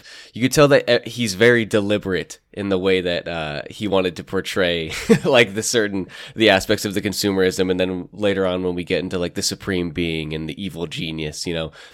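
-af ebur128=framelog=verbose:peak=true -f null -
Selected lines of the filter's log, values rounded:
Integrated loudness:
  I:         -19.8 LUFS
  Threshold: -29.9 LUFS
Loudness range:
  LRA:         5.0 LU
  Threshold: -39.9 LUFS
  LRA low:   -23.1 LUFS
  LRA high:  -18.1 LUFS
True peak:
  Peak:       -1.3 dBFS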